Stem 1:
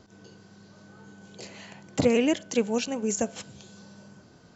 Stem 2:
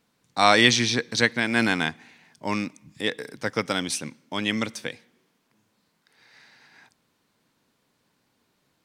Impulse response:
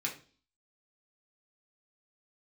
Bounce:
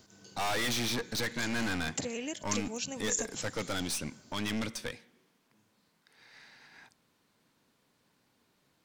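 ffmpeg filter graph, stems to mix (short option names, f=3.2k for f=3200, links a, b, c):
-filter_complex "[0:a]acompressor=threshold=-30dB:ratio=3,crystalizer=i=4:c=0,volume=-8dB[a];[1:a]aeval=exprs='(tanh(31.6*val(0)+0.45)-tanh(0.45))/31.6':c=same,volume=0dB[b];[a][b]amix=inputs=2:normalize=0"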